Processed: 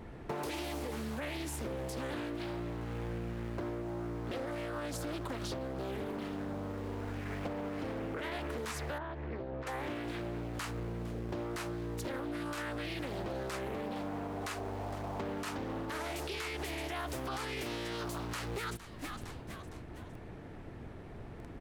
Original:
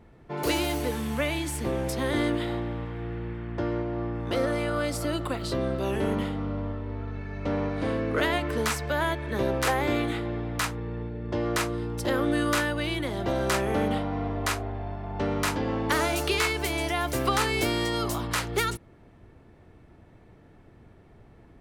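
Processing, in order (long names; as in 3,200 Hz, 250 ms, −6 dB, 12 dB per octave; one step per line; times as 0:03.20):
mains-hum notches 50/100/150/200 Hz
in parallel at −9.5 dB: bit reduction 7 bits
on the sum: echo with shifted repeats 460 ms, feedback 43%, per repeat −120 Hz, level −24 dB
brickwall limiter −19 dBFS, peak gain reduction 8.5 dB
downward compressor 12 to 1, threshold −42 dBFS, peak gain reduction 18.5 dB
0:08.98–0:09.67: head-to-tape spacing loss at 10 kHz 37 dB
highs frequency-modulated by the lows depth 0.54 ms
level +6.5 dB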